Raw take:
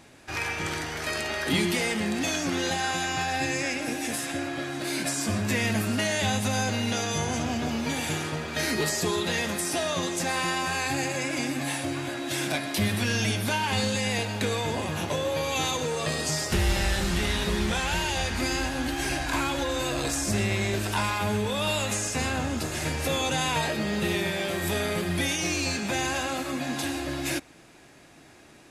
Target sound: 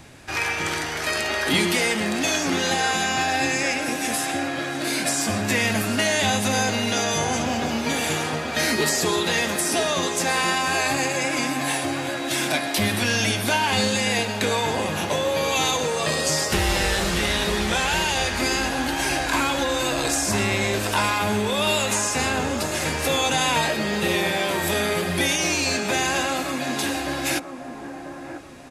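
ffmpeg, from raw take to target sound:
-filter_complex "[0:a]lowshelf=f=230:g=-7.5,acrossover=split=160|1600|4400[s0][s1][s2][s3];[s0]acompressor=mode=upward:threshold=0.00501:ratio=2.5[s4];[s1]aecho=1:1:990|1980|2970|3960:0.447|0.152|0.0516|0.0176[s5];[s4][s5][s2][s3]amix=inputs=4:normalize=0,volume=2"

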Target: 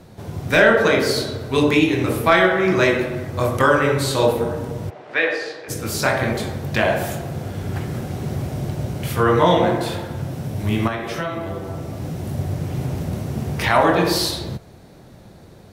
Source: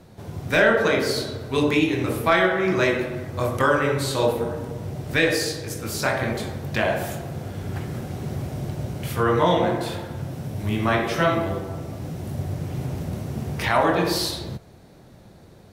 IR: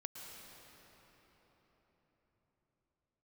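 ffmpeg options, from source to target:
-filter_complex "[0:a]asplit=3[s0][s1][s2];[s0]afade=t=out:st=4.89:d=0.02[s3];[s1]highpass=570,lowpass=2400,afade=t=in:st=4.89:d=0.02,afade=t=out:st=5.68:d=0.02[s4];[s2]afade=t=in:st=5.68:d=0.02[s5];[s3][s4][s5]amix=inputs=3:normalize=0,asettb=1/sr,asplit=3[s6][s7][s8];[s6]atrim=end=10.874[s9];[s7]atrim=start=10.87:end=11.97,asetpts=PTS-STARTPTS,afade=t=in:d=0.004:c=qsin,afade=t=out:st=1.096:d=0.004:c=qsin,acompressor=threshold=0.0398:ratio=4[s10];[s8]atrim=start=11.966[s11];[s9][s10]acrossfade=d=0.004:c1=hsin:c2=qsin[s12];[s12][s11]acrossfade=d=0.004:c1=qsin:c2=hsin,volume=1.58"

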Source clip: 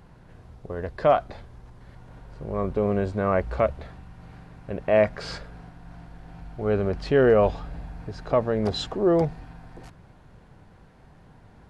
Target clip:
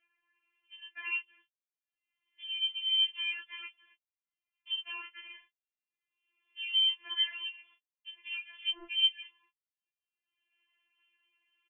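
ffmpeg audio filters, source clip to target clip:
-filter_complex "[0:a]asetnsamples=n=441:p=0,asendcmd='1.13 highpass f 480',highpass=1100,afwtdn=0.0158,agate=range=0.00316:threshold=0.002:ratio=16:detection=peak,acompressor=threshold=0.0398:ratio=4,alimiter=level_in=1.12:limit=0.0631:level=0:latency=1:release=18,volume=0.891,acompressor=mode=upward:threshold=0.0126:ratio=2.5,asplit=2[s0][s1];[s1]adelay=13,volume=0.75[s2];[s0][s2]amix=inputs=2:normalize=0,lowpass=f=3000:t=q:w=0.5098,lowpass=f=3000:t=q:w=0.6013,lowpass=f=3000:t=q:w=0.9,lowpass=f=3000:t=q:w=2.563,afreqshift=-3500,afftfilt=real='re*4*eq(mod(b,16),0)':imag='im*4*eq(mod(b,16),0)':win_size=2048:overlap=0.75"

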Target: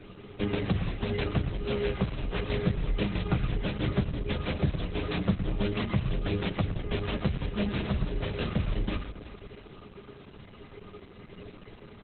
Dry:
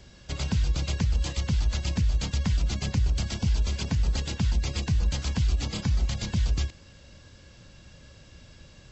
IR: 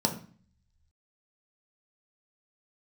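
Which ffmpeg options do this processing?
-filter_complex "[0:a]equalizer=f=530:w=0.54:g=9.5,aecho=1:1:7.3:0.53,bandreject=f=74.8:t=h:w=4,bandreject=f=149.6:t=h:w=4,bandreject=f=224.4:t=h:w=4,bandreject=f=299.2:t=h:w=4,bandreject=f=374:t=h:w=4,bandreject=f=448.8:t=h:w=4,acompressor=threshold=0.0501:ratio=3,flanger=delay=6.4:depth=7.7:regen=-29:speed=0.23:shape=triangular,aecho=1:1:83|249|484:0.251|0.188|0.106,asplit=2[s0][s1];[1:a]atrim=start_sample=2205,afade=t=out:st=0.43:d=0.01,atrim=end_sample=19404[s2];[s1][s2]afir=irnorm=-1:irlink=0,volume=0.1[s3];[s0][s3]amix=inputs=2:normalize=0,asetrate=32667,aresample=44100,volume=1.68" -ar 48000 -c:a libopus -b:a 8k

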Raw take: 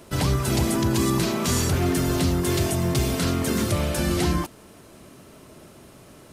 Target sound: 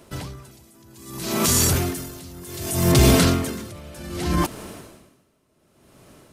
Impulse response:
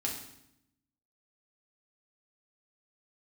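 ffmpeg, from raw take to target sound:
-filter_complex "[0:a]asettb=1/sr,asplit=3[s0][s1][s2];[s0]atrim=end=0.514[s3];[s1]atrim=start=0.51:end=2.92,asetpts=PTS-STARTPTS,afade=t=in:d=0.004:c=qsin,afade=t=out:st=2.406:d=0.004:c=qsin,highshelf=f=5400:g=11.5[s4];[s2]atrim=start=2.916[s5];[s3][s4]acrossfade=d=0.004:c1=hsin:c2=qsin[s6];[s6][s5]acrossfade=d=0.004:c1=qsin:c2=hsin,alimiter=limit=0.133:level=0:latency=1:release=17,dynaudnorm=f=320:g=9:m=6.68,aeval=exprs='val(0)*pow(10,-26*(0.5-0.5*cos(2*PI*0.65*n/s))/20)':c=same,volume=0.75"

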